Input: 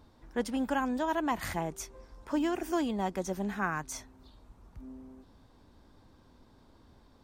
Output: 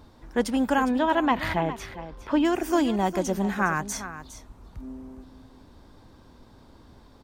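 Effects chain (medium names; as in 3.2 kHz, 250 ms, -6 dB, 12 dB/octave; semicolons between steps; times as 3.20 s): 0.87–2.45 s: resonant high shelf 4.9 kHz -12 dB, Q 1.5; delay 409 ms -13 dB; trim +7.5 dB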